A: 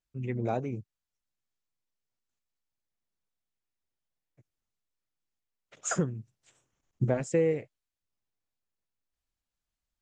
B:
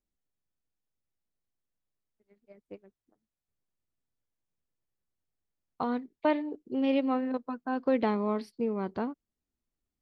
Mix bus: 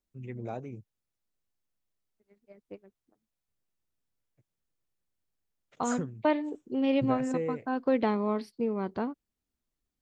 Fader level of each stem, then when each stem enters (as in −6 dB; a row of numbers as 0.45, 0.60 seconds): −7.0, +0.5 decibels; 0.00, 0.00 seconds